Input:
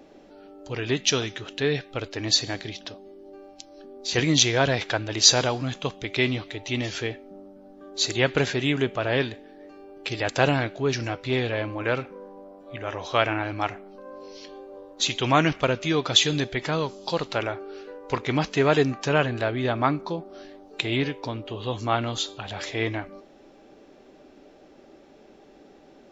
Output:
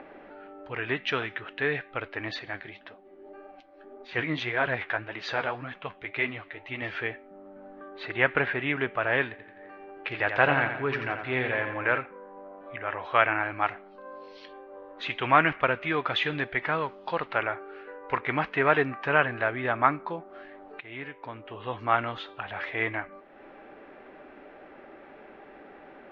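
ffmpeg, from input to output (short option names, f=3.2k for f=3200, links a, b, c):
-filter_complex "[0:a]asettb=1/sr,asplit=3[a][b][c];[a]atrim=end=2.394[d];[b]atrim=start=2.39:end=6.82,asetpts=PTS-STARTPTS,afade=t=in:d=0.004:c=qsin,afade=t=out:st=4.426:d=0.004:c=qsin,flanger=delay=3.6:depth=9.8:regen=39:speed=1.8:shape=triangular[e];[c]atrim=start=6.816[f];[d][e]acrossfade=d=0.004:c1=hsin:c2=qsin[g];[g][f]acrossfade=d=0.004:c1=qsin:c2=hsin,asettb=1/sr,asplit=3[h][i][j];[h]atrim=end=7.884[k];[i]atrim=start=7.88:end=8.7,asetpts=PTS-STARTPTS,afade=t=in:d=0.004:c=qsin,afade=t=out:st=0.816:d=0.004:c=qsin,lowpass=3.6k[l];[j]atrim=start=8.696[m];[k][l]acrossfade=d=0.004:c1=hsin:c2=qsin[n];[n][m]acrossfade=d=0.004:c1=qsin:c2=hsin,asettb=1/sr,asplit=3[o][p][q];[o]atrim=end=9.304[r];[p]atrim=start=9.3:end=11.98,asetpts=PTS-STARTPTS,afade=t=in:d=0.004:c=qsin,afade=t=out:st=2.676:d=0.004:c=qsin,aecho=1:1:86|172|258|344|430|516:0.422|0.202|0.0972|0.0466|0.0224|0.0107,atrim=end_sample=118188[s];[q]atrim=start=11.976[t];[r][s]acrossfade=d=0.004:c1=hsin:c2=qsin[u];[u][t]acrossfade=d=0.004:c1=qsin:c2=hsin,asettb=1/sr,asplit=3[v][w][x];[v]atrim=end=13.664[y];[w]atrim=start=13.66:end=14.53,asetpts=PTS-STARTPTS,afade=t=in:d=0.004:c=qsin,afade=t=out:st=0.866:d=0.004:c=qsin,highshelf=f=3k:t=q:w=1.5:g=9.5[z];[x]atrim=start=14.526[aa];[y][z]acrossfade=d=0.004:c1=hsin:c2=qsin[ab];[ab][aa]acrossfade=d=0.004:c1=qsin:c2=hsin,asplit=2[ac][ad];[ac]atrim=end=20.8,asetpts=PTS-STARTPTS,afade=t=out:st=20.796:d=0.004:c=hsin:silence=0.149624[ae];[ad]atrim=start=20.8,asetpts=PTS-STARTPTS,afade=t=in:d=0.96:silence=0.149624[af];[ae][af]concat=n=2:v=0:a=1,tiltshelf=f=850:g=-9.5,acompressor=mode=upward:threshold=-38dB:ratio=2.5,lowpass=f=2k:w=0.5412,lowpass=f=2k:w=1.3066"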